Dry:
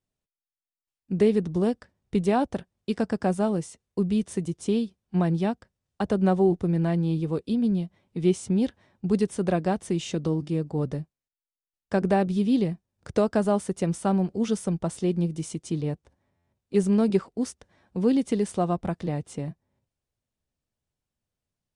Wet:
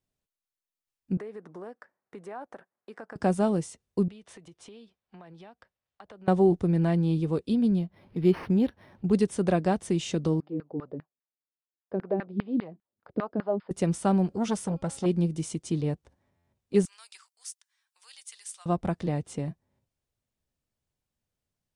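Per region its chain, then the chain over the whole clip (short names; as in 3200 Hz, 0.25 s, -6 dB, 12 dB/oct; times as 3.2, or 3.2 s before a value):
1.17–3.16 Bessel high-pass 620 Hz + compressor 3:1, threshold -41 dBFS + resonant high shelf 2300 Hz -12 dB, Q 1.5
4.08–6.28 three-band isolator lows -14 dB, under 490 Hz, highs -13 dB, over 4300 Hz + compressor, threshold -46 dBFS
7.79–9.13 upward compressor, threshold -42 dBFS + decimation joined by straight lines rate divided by 6×
10.4–13.71 LFO band-pass saw down 5 Hz 210–1800 Hz + brick-wall FIR low-pass 5200 Hz
14.28–15.06 de-hum 272.2 Hz, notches 18 + core saturation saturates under 630 Hz
16.85–18.66 HPF 1000 Hz 24 dB/oct + differentiator
whole clip: dry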